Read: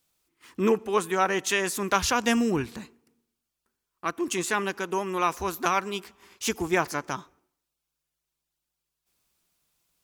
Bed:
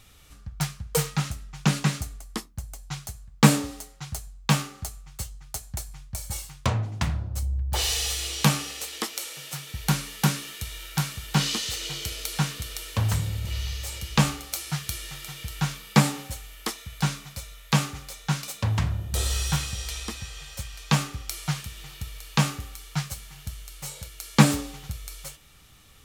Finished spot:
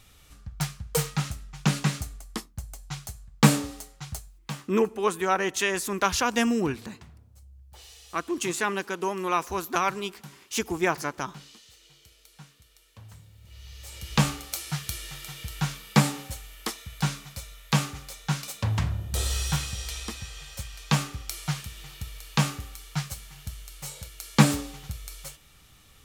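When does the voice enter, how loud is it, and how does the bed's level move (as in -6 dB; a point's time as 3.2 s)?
4.10 s, -0.5 dB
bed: 4.12 s -1.5 dB
4.82 s -23.5 dB
13.33 s -23.5 dB
14.14 s -1.5 dB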